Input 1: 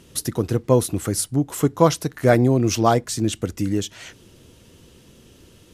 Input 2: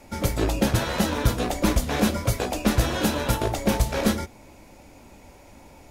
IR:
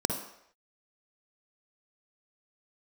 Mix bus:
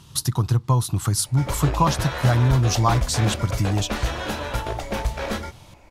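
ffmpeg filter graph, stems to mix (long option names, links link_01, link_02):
-filter_complex "[0:a]equalizer=frequency=125:width_type=o:width=1:gain=11,equalizer=frequency=250:width_type=o:width=1:gain=-6,equalizer=frequency=500:width_type=o:width=1:gain=-12,equalizer=frequency=1000:width_type=o:width=1:gain=12,equalizer=frequency=2000:width_type=o:width=1:gain=-6,equalizer=frequency=4000:width_type=o:width=1:gain=6,acompressor=threshold=-16dB:ratio=4,volume=0dB[link_01];[1:a]lowpass=frequency=2600:poles=1,equalizer=frequency=220:width=0.57:gain=-10.5,asoftclip=type=tanh:threshold=-14.5dB,adelay=1250,volume=2dB[link_02];[link_01][link_02]amix=inputs=2:normalize=0"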